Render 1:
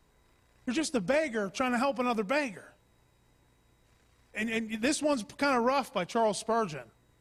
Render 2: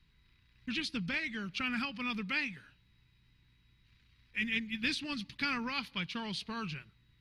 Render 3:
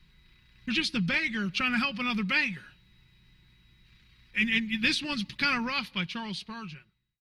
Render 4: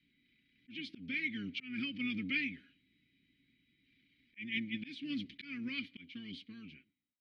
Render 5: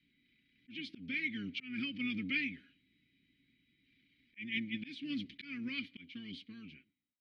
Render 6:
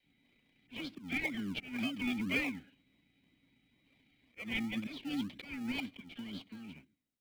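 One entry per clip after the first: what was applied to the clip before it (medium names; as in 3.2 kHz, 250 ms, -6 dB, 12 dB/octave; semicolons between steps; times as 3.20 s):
FFT filter 170 Hz 0 dB, 410 Hz -15 dB, 650 Hz -27 dB, 930 Hz -13 dB, 2.5 kHz +3 dB, 4.3 kHz +3 dB, 7.7 kHz -20 dB, 11 kHz -13 dB
fade out at the end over 1.74 s; comb 5.5 ms, depth 40%; trim +7 dB
octave divider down 1 oct, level -2 dB; vowel filter i; slow attack 276 ms; trim +2 dB
no audible change
phase dispersion lows, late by 41 ms, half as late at 520 Hz; in parallel at -7 dB: decimation with a swept rate 33×, swing 60% 2 Hz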